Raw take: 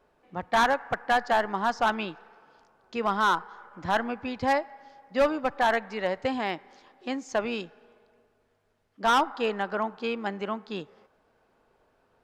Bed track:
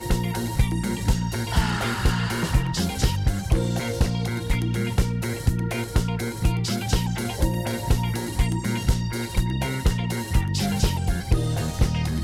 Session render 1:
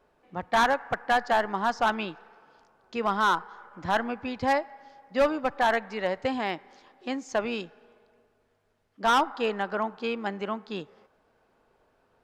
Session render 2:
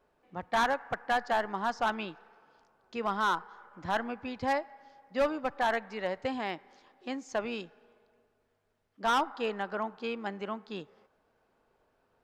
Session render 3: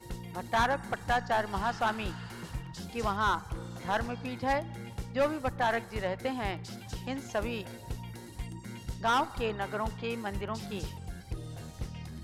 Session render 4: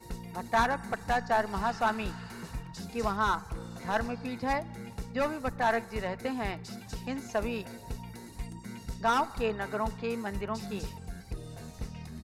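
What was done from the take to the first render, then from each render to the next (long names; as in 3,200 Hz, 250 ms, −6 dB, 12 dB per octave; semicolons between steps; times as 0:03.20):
no processing that can be heard
level −5 dB
mix in bed track −17.5 dB
notch filter 3,200 Hz, Q 6.1; comb filter 4.5 ms, depth 36%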